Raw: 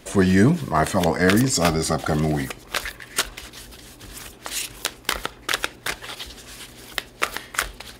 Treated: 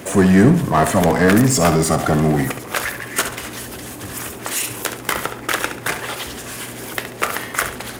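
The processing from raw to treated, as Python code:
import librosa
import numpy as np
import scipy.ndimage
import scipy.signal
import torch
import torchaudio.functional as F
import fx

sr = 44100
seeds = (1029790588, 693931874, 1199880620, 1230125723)

y = scipy.signal.sosfilt(scipy.signal.butter(4, 81.0, 'highpass', fs=sr, output='sos'), x)
y = fx.peak_eq(y, sr, hz=4100.0, db=-9.5, octaves=1.2)
y = fx.power_curve(y, sr, exponent=0.7)
y = fx.echo_feedback(y, sr, ms=69, feedback_pct=35, wet_db=-10)
y = F.gain(torch.from_numpy(y), 1.5).numpy()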